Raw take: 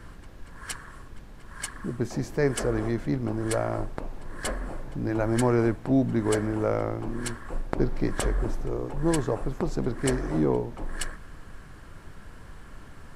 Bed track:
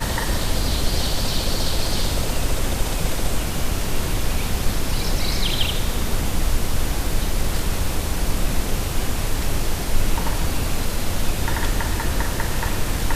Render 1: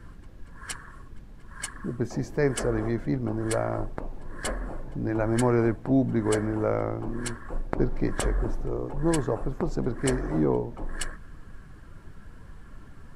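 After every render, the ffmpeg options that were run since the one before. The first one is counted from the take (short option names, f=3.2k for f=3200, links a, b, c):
-af "afftdn=nr=7:nf=-46"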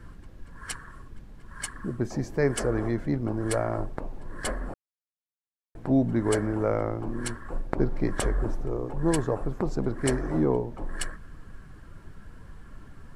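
-filter_complex "[0:a]asplit=3[a][b][c];[a]atrim=end=4.74,asetpts=PTS-STARTPTS,afade=t=out:st=4.736:d=0.004:c=hsin[d];[b]atrim=start=4.74:end=5.75,asetpts=PTS-STARTPTS,volume=0[e];[c]atrim=start=5.75,asetpts=PTS-STARTPTS,afade=t=in:d=0.004:c=hsin[f];[d][e][f]concat=n=3:v=0:a=1"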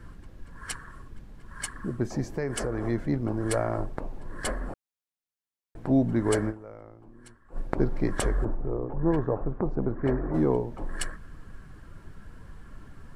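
-filter_complex "[0:a]asettb=1/sr,asplit=3[a][b][c];[a]atrim=end=2.344[d];[b]atrim=start=2.34:end=2.87,asetpts=PTS-STARTPTS,afade=t=in:d=0.004:c=qsin,afade=t=out:st=0.526:d=0.004:c=qsin,acompressor=threshold=-25dB:ratio=6:attack=3.2:release=140:knee=1:detection=peak[e];[c]atrim=start=2.866[f];[d][e]acrossfade=d=0.004:c1=hsin:c2=qsin[g];[g][f]acrossfade=d=0.004:c1=qsin:c2=hsin,asplit=3[h][i][j];[h]afade=t=out:st=8.44:d=0.02[k];[i]lowpass=1.3k,afade=t=in:st=8.44:d=0.02,afade=t=out:st=10.33:d=0.02[l];[j]afade=t=in:st=10.33:d=0.02[m];[k][l][m]amix=inputs=3:normalize=0,asplit=3[n][o][p];[n]atrim=end=6.78,asetpts=PTS-STARTPTS,afade=t=out:st=6.49:d=0.29:c=exp:silence=0.112202[q];[o]atrim=start=6.78:end=7.29,asetpts=PTS-STARTPTS,volume=-19dB[r];[p]atrim=start=7.29,asetpts=PTS-STARTPTS,afade=t=in:d=0.29:c=exp:silence=0.112202[s];[q][r][s]concat=n=3:v=0:a=1"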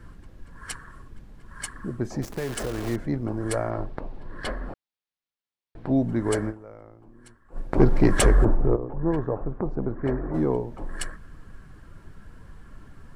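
-filter_complex "[0:a]asettb=1/sr,asplit=3[a][b][c];[a]atrim=end=2.224[d];[b]atrim=start=2.22:end=2.96,asetpts=PTS-STARTPTS,afade=t=in:d=0.004:c=qsin,afade=t=out:st=0.736:d=0.004:c=qsin,acrusher=bits=7:dc=4:mix=0:aa=0.000001[e];[c]atrim=start=2.956[f];[d][e]acrossfade=d=0.004:c1=hsin:c2=qsin[g];[g][f]acrossfade=d=0.004:c1=qsin:c2=hsin,asettb=1/sr,asplit=3[h][i][j];[h]atrim=end=3.704[k];[i]atrim=start=3.7:end=5.97,asetpts=PTS-STARTPTS,afade=t=in:d=0.004:c=qsin,afade=t=out:st=2.266:d=0.004:c=qsin,highshelf=f=5.6k:t=q:w=1.5:g=-9[l];[j]atrim=start=5.966[m];[k][l]acrossfade=d=0.004:c1=hsin:c2=qsin[n];[n][m]acrossfade=d=0.004:c1=qsin:c2=hsin,asettb=1/sr,asplit=3[o][p][q];[o]atrim=end=7.744[r];[p]atrim=start=7.74:end=8.76,asetpts=PTS-STARTPTS,afade=t=in:d=0.004:c=qsin,afade=t=out:st=1.016:d=0.004:c=qsin,aeval=exprs='0.398*sin(PI/2*2*val(0)/0.398)':c=same[s];[q]atrim=start=8.756[t];[r][s]acrossfade=d=0.004:c1=hsin:c2=qsin[u];[u][t]acrossfade=d=0.004:c1=qsin:c2=hsin"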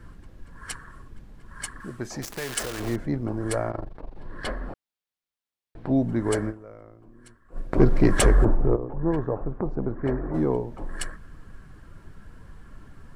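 -filter_complex "[0:a]asettb=1/sr,asplit=3[a][b][c];[a]atrim=end=1.804[d];[b]atrim=start=1.8:end=2.8,asetpts=PTS-STARTPTS,afade=t=in:d=0.004:c=qsin,afade=t=out:st=0.996:d=0.004:c=qsin,tiltshelf=f=880:g=-6.5[e];[c]atrim=start=2.796[f];[d][e]acrossfade=d=0.004:c1=hsin:c2=qsin[g];[g][f]acrossfade=d=0.004:c1=qsin:c2=hsin,asplit=3[h][i][j];[h]afade=t=out:st=3.7:d=0.02[k];[i]tremolo=f=24:d=0.857,afade=t=in:st=3.7:d=0.02,afade=t=out:st=4.15:d=0.02[l];[j]afade=t=in:st=4.15:d=0.02[m];[k][l][m]amix=inputs=3:normalize=0,asettb=1/sr,asplit=3[n][o][p];[n]atrim=end=6.444[q];[o]atrim=start=6.44:end=8.1,asetpts=PTS-STARTPTS,afade=t=in:d=0.004:c=qsin,afade=t=out:st=1.656:d=0.004:c=qsin,bandreject=f=840:w=6.3[r];[p]atrim=start=8.096[s];[q][r]acrossfade=d=0.004:c1=hsin:c2=qsin[t];[t][s]acrossfade=d=0.004:c1=qsin:c2=hsin"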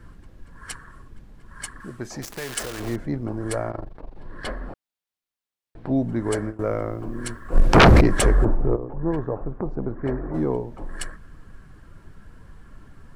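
-filter_complex "[0:a]asettb=1/sr,asplit=3[a][b][c];[a]atrim=end=6.594[d];[b]atrim=start=6.59:end=8.01,asetpts=PTS-STARTPTS,afade=t=in:d=0.004:c=qsin,afade=t=out:st=1.416:d=0.004:c=qsin,aeval=exprs='0.447*sin(PI/2*6.31*val(0)/0.447)':c=same[e];[c]atrim=start=8.006[f];[d][e]acrossfade=d=0.004:c1=hsin:c2=qsin[g];[g][f]acrossfade=d=0.004:c1=qsin:c2=hsin"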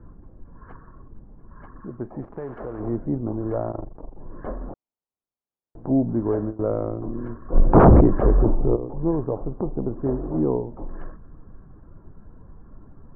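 -af "lowpass=f=1.1k:w=0.5412,lowpass=f=1.1k:w=1.3066,equalizer=f=300:t=o:w=1.5:g=2.5"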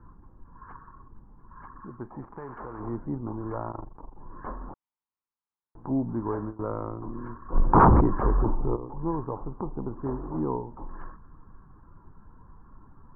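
-af "lowpass=1.7k,lowshelf=f=780:t=q:w=3:g=-6"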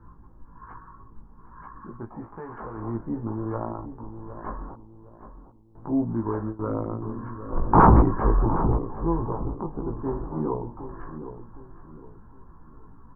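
-filter_complex "[0:a]asplit=2[a][b];[b]adelay=18,volume=-2.5dB[c];[a][c]amix=inputs=2:normalize=0,asplit=2[d][e];[e]adelay=762,lowpass=f=900:p=1,volume=-10dB,asplit=2[f][g];[g]adelay=762,lowpass=f=900:p=1,volume=0.37,asplit=2[h][i];[i]adelay=762,lowpass=f=900:p=1,volume=0.37,asplit=2[j][k];[k]adelay=762,lowpass=f=900:p=1,volume=0.37[l];[d][f][h][j][l]amix=inputs=5:normalize=0"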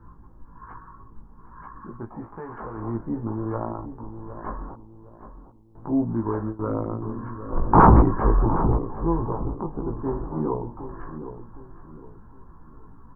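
-af "volume=1.5dB"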